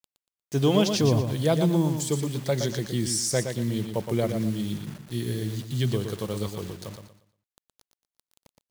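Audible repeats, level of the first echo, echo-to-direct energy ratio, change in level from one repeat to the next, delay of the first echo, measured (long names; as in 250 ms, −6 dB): 3, −7.0 dB, −6.5 dB, −11.0 dB, 118 ms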